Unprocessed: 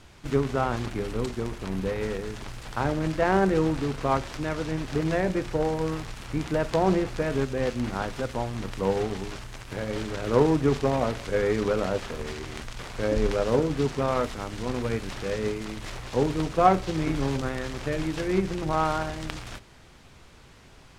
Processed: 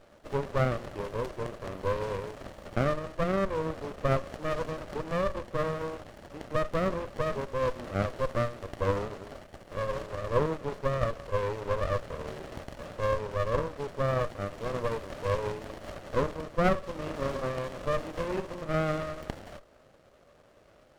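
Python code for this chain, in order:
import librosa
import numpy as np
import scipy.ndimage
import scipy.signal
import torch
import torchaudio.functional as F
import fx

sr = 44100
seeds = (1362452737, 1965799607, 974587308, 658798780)

y = fx.highpass_res(x, sr, hz=580.0, q=6.4)
y = fx.rider(y, sr, range_db=4, speed_s=0.5)
y = fx.running_max(y, sr, window=33)
y = y * librosa.db_to_amplitude(-7.5)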